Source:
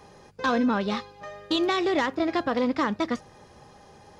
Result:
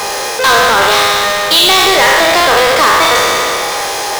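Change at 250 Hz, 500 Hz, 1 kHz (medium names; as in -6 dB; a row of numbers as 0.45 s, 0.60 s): +2.0 dB, +16.0 dB, +20.0 dB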